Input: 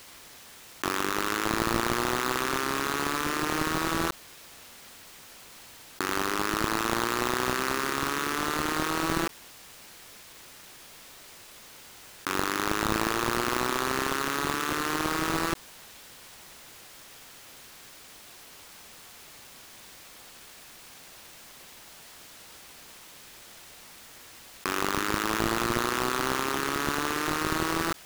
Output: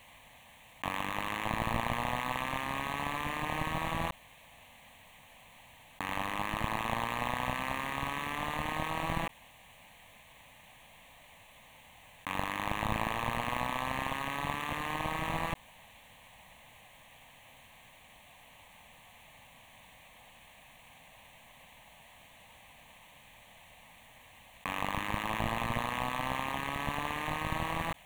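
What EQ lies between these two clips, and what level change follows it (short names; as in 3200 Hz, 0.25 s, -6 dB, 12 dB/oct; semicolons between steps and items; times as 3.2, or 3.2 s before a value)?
LPF 2800 Hz 6 dB/oct; fixed phaser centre 1400 Hz, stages 6; 0.0 dB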